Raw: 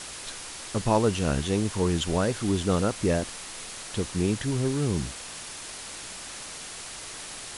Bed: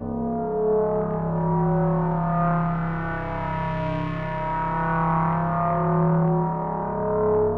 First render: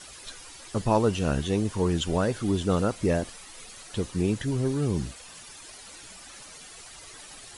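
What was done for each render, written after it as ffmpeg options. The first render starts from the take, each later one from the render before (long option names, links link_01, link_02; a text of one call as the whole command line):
ffmpeg -i in.wav -af "afftdn=noise_reduction=11:noise_floor=-40" out.wav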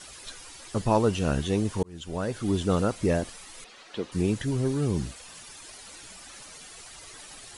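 ffmpeg -i in.wav -filter_complex "[0:a]asettb=1/sr,asplit=3[link_01][link_02][link_03];[link_01]atrim=end=3.644[link_04];[link_02]atrim=start=3.64:end=4.12,asetpts=PTS-STARTPTS,afade=type=in:duration=0.004:curve=qsin,afade=type=out:start_time=0.476:duration=0.004:curve=qsin,acrossover=split=210 4900:gain=0.112 1 0.1[link_05][link_06][link_07];[link_05][link_06][link_07]amix=inputs=3:normalize=0[link_08];[link_03]atrim=start=4.116[link_09];[link_04][link_08]acrossfade=duration=0.004:curve1=hsin:curve2=qsin[link_10];[link_10][link_09]acrossfade=duration=0.004:curve1=qsin:curve2=hsin,asplit=2[link_11][link_12];[link_11]atrim=end=1.83,asetpts=PTS-STARTPTS,afade=type=out:start_time=1.826:duration=0.004:curve=hsin[link_13];[link_12]atrim=start=1.83,asetpts=PTS-STARTPTS,afade=type=in:duration=0.71[link_14];[link_13][link_14]concat=n=2:v=0:a=1" out.wav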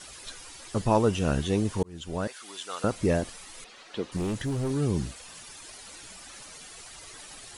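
ffmpeg -i in.wav -filter_complex "[0:a]asettb=1/sr,asplit=3[link_01][link_02][link_03];[link_01]atrim=end=0.874[link_04];[link_02]atrim=start=0.87:end=1.28,asetpts=PTS-STARTPTS,afade=type=in:duration=0.004:curve=qsin,afade=type=out:start_time=0.406:duration=0.004:curve=qsin,bandreject=frequency=4300:width=12[link_05];[link_03]atrim=start=1.276[link_06];[link_04][link_05]acrossfade=duration=0.004:curve1=hsin:curve2=qsin[link_07];[link_07][link_06]acrossfade=duration=0.004:curve1=qsin:curve2=hsin,asettb=1/sr,asplit=3[link_08][link_09][link_10];[link_08]atrim=end=2.274[link_11];[link_09]atrim=start=2.27:end=2.84,asetpts=PTS-STARTPTS,afade=type=in:duration=0.004:curve=qsin,afade=type=out:start_time=0.566:duration=0.004:curve=qsin,highpass=1200[link_12];[link_10]atrim=start=2.836[link_13];[link_11][link_12]acrossfade=duration=0.004:curve1=hsin:curve2=qsin[link_14];[link_14][link_13]acrossfade=duration=0.004:curve1=qsin:curve2=hsin,asettb=1/sr,asplit=3[link_15][link_16][link_17];[link_15]atrim=end=4.164[link_18];[link_16]atrim=start=4.16:end=4.71,asetpts=PTS-STARTPTS,afade=type=in:duration=0.004:curve=qsin,afade=type=out:start_time=0.546:duration=0.004:curve=qsin,asoftclip=type=hard:threshold=-25.5dB[link_19];[link_17]atrim=start=4.706[link_20];[link_18][link_19]acrossfade=duration=0.004:curve1=hsin:curve2=qsin[link_21];[link_21][link_20]acrossfade=duration=0.004:curve1=qsin:curve2=hsin" out.wav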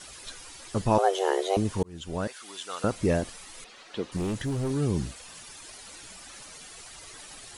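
ffmpeg -i in.wav -filter_complex "[0:a]asettb=1/sr,asplit=3[link_01][link_02][link_03];[link_01]atrim=end=0.984[link_04];[link_02]atrim=start=0.98:end=1.57,asetpts=PTS-STARTPTS,afade=type=in:duration=0.004:curve=qsin,afade=type=out:start_time=0.586:duration=0.004:curve=qsin,afreqshift=290[link_05];[link_03]atrim=start=1.566[link_06];[link_04][link_05]acrossfade=duration=0.004:curve1=hsin:curve2=qsin[link_07];[link_07][link_06]acrossfade=duration=0.004:curve1=qsin:curve2=hsin" out.wav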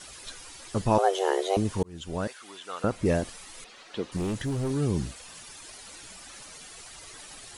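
ffmpeg -i in.wav -filter_complex "[0:a]asettb=1/sr,asplit=3[link_01][link_02][link_03];[link_01]atrim=end=2.334[link_04];[link_02]atrim=start=2.33:end=3.06,asetpts=PTS-STARTPTS,afade=type=in:duration=0.004:curve=qsin,afade=type=out:start_time=0.726:duration=0.004:curve=qsin,acrossover=split=2900[link_05][link_06];[link_06]acompressor=threshold=-49dB:ratio=4:attack=1:release=60[link_07];[link_05][link_07]amix=inputs=2:normalize=0[link_08];[link_03]atrim=start=3.056[link_09];[link_04][link_08]acrossfade=duration=0.004:curve1=hsin:curve2=qsin[link_10];[link_10][link_09]acrossfade=duration=0.004:curve1=qsin:curve2=hsin" out.wav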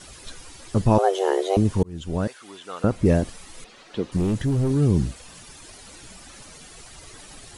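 ffmpeg -i in.wav -af "lowshelf=frequency=420:gain=9.5" out.wav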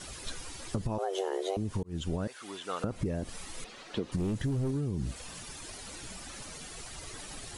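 ffmpeg -i in.wav -af "alimiter=limit=-16.5dB:level=0:latency=1:release=134,acompressor=threshold=-28dB:ratio=10" out.wav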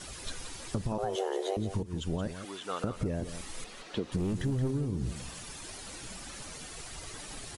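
ffmpeg -i in.wav -af "aecho=1:1:175:0.299" out.wav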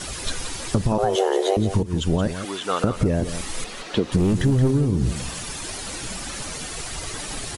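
ffmpeg -i in.wav -af "volume=12dB" out.wav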